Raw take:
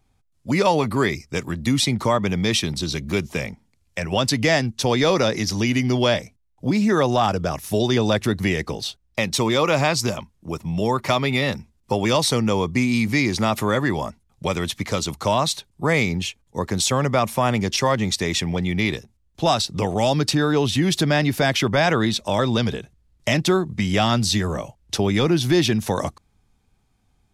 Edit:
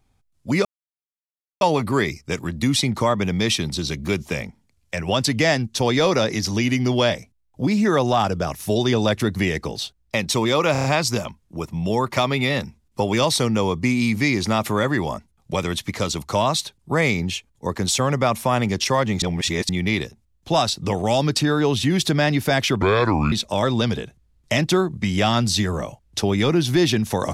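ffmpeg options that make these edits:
-filter_complex "[0:a]asplit=10[s0][s1][s2][s3][s4][s5][s6][s7][s8][s9];[s0]atrim=end=0.65,asetpts=PTS-STARTPTS,afade=t=out:st=0.646:d=0.004:c=hsin,apad=pad_dur=0.96[s10];[s1]atrim=start=0.65:end=9.792,asetpts=PTS-STARTPTS,afade=t=in:d=0.004:c=hsin[s11];[s2]atrim=start=9.758:end=9.792[s12];[s3]atrim=start=9.758:end=9.792[s13];[s4]atrim=start=9.758:end=9.792[s14];[s5]atrim=start=9.758:end=18.142[s15];[s6]atrim=start=18.138:end=18.612,asetpts=PTS-STARTPTS,areverse[s16];[s7]atrim=start=18.608:end=21.744[s17];[s8]atrim=start=21.74:end=22.08,asetpts=PTS-STARTPTS,asetrate=29988,aresample=44100[s18];[s9]atrim=start=22.076[s19];[s10][s11]concat=n=2:v=0:a=1[s20];[s20][s12]acrossfade=d=0.004:c1=hsin:c2=hsin[s21];[s21][s13]acrossfade=d=0.004:c1=hsin:c2=hsin[s22];[s22][s14]acrossfade=d=0.004:c1=hsin:c2=hsin[s23];[s23][s15]acrossfade=d=0.004:c1=hsin:c2=hsin[s24];[s24][s16]acrossfade=d=0.004:c1=hsin:c2=hsin[s25];[s25][s17]acrossfade=d=0.004:c1=hsin:c2=hsin[s26];[s26][s18]acrossfade=d=0.004:c1=hsin:c2=hsin[s27];[s27][s19]acrossfade=d=0.004:c1=hsin:c2=hsin"

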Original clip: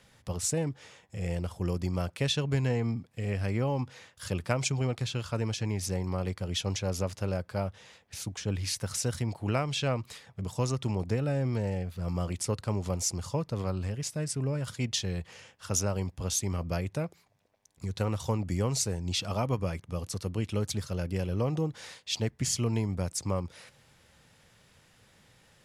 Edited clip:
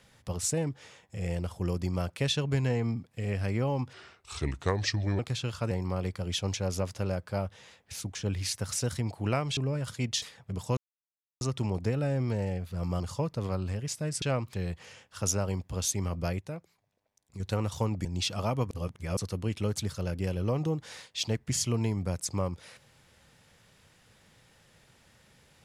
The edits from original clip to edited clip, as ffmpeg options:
-filter_complex "[0:a]asplit=15[s0][s1][s2][s3][s4][s5][s6][s7][s8][s9][s10][s11][s12][s13][s14];[s0]atrim=end=3.934[s15];[s1]atrim=start=3.93:end=4.9,asetpts=PTS-STARTPTS,asetrate=33957,aresample=44100[s16];[s2]atrim=start=4.896:end=5.422[s17];[s3]atrim=start=5.928:end=9.792[s18];[s4]atrim=start=14.368:end=15.022[s19];[s5]atrim=start=10.108:end=10.66,asetpts=PTS-STARTPTS,afade=t=out:st=0.548:d=0.004:c=hsin,apad=pad_dur=0.64[s20];[s6]atrim=start=10.66:end=12.252,asetpts=PTS-STARTPTS,afade=t=in:d=0.004:c=hsin[s21];[s7]atrim=start=13.148:end=14.372[s22];[s8]atrim=start=9.788:end=10.112[s23];[s9]atrim=start=15.018:end=16.872[s24];[s10]atrim=start=16.868:end=17.882,asetpts=PTS-STARTPTS,volume=0.473[s25];[s11]atrim=start=17.878:end=18.532[s26];[s12]atrim=start=18.968:end=19.632[s27];[s13]atrim=start=19.628:end=20.092,asetpts=PTS-STARTPTS,areverse[s28];[s14]atrim=start=20.088[s29];[s15][s16]acrossfade=d=0.004:c1=hsin:c2=hsin[s30];[s30][s17]acrossfade=d=0.004:c1=hsin:c2=hsin[s31];[s31][s18]acrossfade=d=0.004:c1=hsin:c2=hsin[s32];[s32][s19]acrossfade=d=0.004:c1=hsin:c2=hsin[s33];[s20][s21]concat=n=2:v=0:a=1[s34];[s33][s34]acrossfade=d=0.004:c1=hsin:c2=hsin[s35];[s35][s22]acrossfade=d=0.004:c1=hsin:c2=hsin[s36];[s36][s23]acrossfade=d=0.004:c1=hsin:c2=hsin[s37];[s37][s24]acrossfade=d=0.004:c1=hsin:c2=hsin[s38];[s38][s25]acrossfade=d=0.004:c1=hsin:c2=hsin[s39];[s39][s26]acrossfade=d=0.004:c1=hsin:c2=hsin[s40];[s40][s27]acrossfade=d=0.004:c1=hsin:c2=hsin[s41];[s41][s28]acrossfade=d=0.004:c1=hsin:c2=hsin[s42];[s42][s29]acrossfade=d=0.004:c1=hsin:c2=hsin"

